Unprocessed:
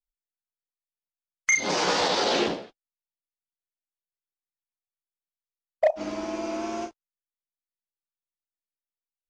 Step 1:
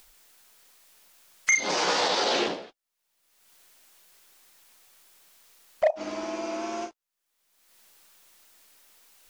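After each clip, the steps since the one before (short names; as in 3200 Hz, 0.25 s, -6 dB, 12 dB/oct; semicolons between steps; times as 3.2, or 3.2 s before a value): low shelf 220 Hz -11 dB; upward compressor, threshold -29 dBFS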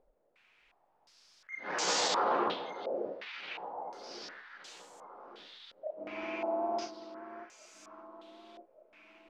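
auto swell 0.435 s; echo with dull and thin repeats by turns 0.584 s, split 1300 Hz, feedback 68%, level -8 dB; stepped low-pass 2.8 Hz 560–7400 Hz; gain -7 dB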